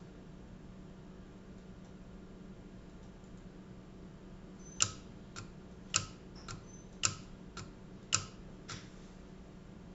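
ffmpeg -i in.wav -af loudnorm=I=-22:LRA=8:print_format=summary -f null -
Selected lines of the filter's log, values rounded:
Input Integrated:    -39.1 LUFS
Input True Peak:      -7.7 dBTP
Input LRA:            13.8 LU
Input Threshold:     -52.1 LUFS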